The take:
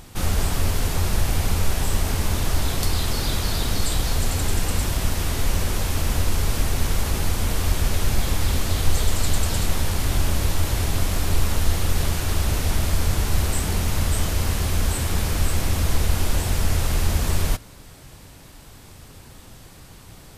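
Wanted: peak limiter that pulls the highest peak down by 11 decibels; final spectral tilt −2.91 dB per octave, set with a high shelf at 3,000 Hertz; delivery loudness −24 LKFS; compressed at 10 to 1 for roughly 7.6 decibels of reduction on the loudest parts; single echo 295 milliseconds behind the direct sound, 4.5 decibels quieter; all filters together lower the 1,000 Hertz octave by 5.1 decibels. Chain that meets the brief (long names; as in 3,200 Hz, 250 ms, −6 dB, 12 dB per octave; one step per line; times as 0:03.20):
parametric band 1,000 Hz −7.5 dB
high-shelf EQ 3,000 Hz +5.5 dB
downward compressor 10 to 1, threshold −20 dBFS
brickwall limiter −17.5 dBFS
single-tap delay 295 ms −4.5 dB
level +4 dB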